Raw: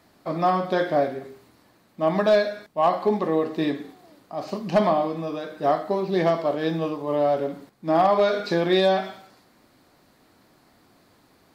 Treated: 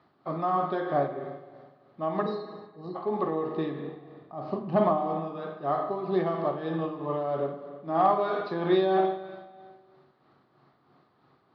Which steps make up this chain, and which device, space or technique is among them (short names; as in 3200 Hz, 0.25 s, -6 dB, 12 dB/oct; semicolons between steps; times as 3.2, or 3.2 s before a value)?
LPF 5400 Hz 12 dB/oct; 2.22–2.95 spectral gain 500–3700 Hz -29 dB; 3.79–4.98 tilt -2 dB/oct; combo amplifier with spring reverb and tremolo (spring tank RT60 1.6 s, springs 42/50 ms, chirp 40 ms, DRR 6 dB; tremolo 3.1 Hz, depth 46%; speaker cabinet 83–4300 Hz, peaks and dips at 140 Hz +9 dB, 380 Hz +6 dB, 790 Hz +5 dB, 1200 Hz +9 dB, 2400 Hz -4 dB); gain -7.5 dB